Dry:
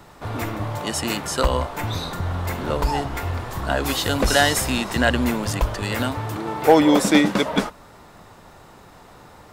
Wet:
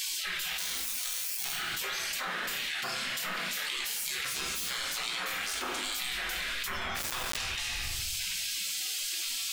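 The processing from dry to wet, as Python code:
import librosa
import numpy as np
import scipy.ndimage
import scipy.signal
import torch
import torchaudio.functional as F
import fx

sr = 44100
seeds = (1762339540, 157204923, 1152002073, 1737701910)

y = fx.tracing_dist(x, sr, depth_ms=0.037)
y = fx.high_shelf(y, sr, hz=2400.0, db=-11.0)
y = fx.sample_hold(y, sr, seeds[0], rate_hz=2500.0, jitter_pct=0, at=(0.58, 1.52))
y = fx.peak_eq(y, sr, hz=930.0, db=7.5, octaves=1.4, at=(3.92, 4.66))
y = fx.spec_gate(y, sr, threshold_db=-30, keep='weak')
y = fx.room_shoebox(y, sr, seeds[1], volume_m3=180.0, walls='mixed', distance_m=0.98)
y = fx.rider(y, sr, range_db=10, speed_s=0.5)
y = fx.quant_dither(y, sr, seeds[2], bits=6, dither='none', at=(6.96, 7.37))
y = fx.env_flatten(y, sr, amount_pct=100)
y = F.gain(torch.from_numpy(y), -2.0).numpy()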